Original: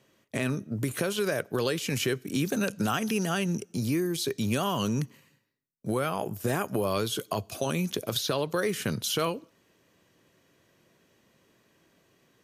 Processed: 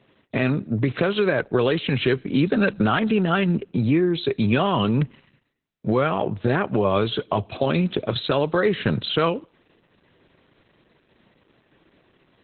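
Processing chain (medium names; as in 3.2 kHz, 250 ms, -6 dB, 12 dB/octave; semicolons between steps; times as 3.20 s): treble shelf 5.9 kHz -4.5 dB; trim +8.5 dB; Opus 8 kbps 48 kHz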